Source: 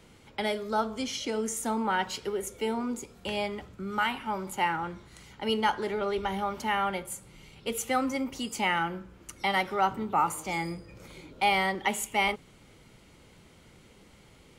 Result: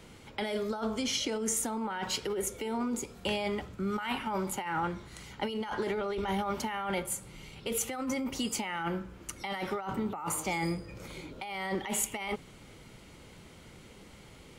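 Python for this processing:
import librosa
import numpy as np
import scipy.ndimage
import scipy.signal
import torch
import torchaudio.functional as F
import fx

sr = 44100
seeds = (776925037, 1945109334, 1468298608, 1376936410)

y = fx.over_compress(x, sr, threshold_db=-33.0, ratio=-1.0)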